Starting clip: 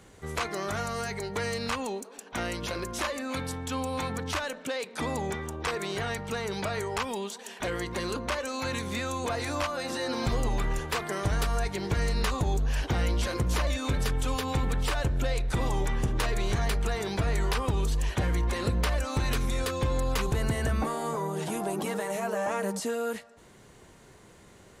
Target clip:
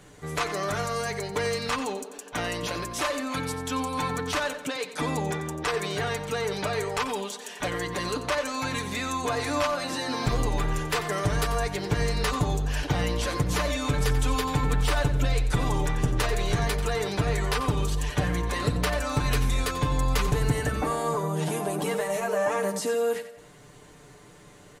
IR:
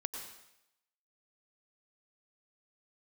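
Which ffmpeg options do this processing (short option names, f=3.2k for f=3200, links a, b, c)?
-af "aecho=1:1:6.8:0.65,aecho=1:1:90|180|270|360:0.251|0.0955|0.0363|0.0138,volume=1.5dB"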